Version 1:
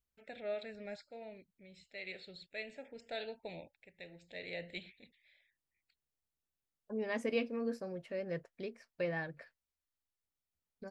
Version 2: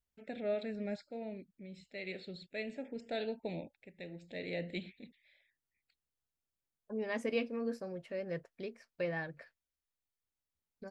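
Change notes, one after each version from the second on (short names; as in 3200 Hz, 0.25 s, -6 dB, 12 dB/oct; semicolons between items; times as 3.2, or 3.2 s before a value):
first voice: add bell 240 Hz +12 dB 1.8 oct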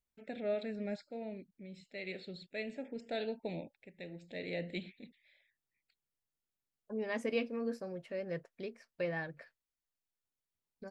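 master: add bell 67 Hz -9.5 dB 0.41 oct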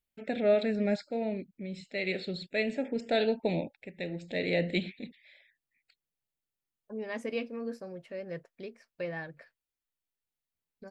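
first voice +10.5 dB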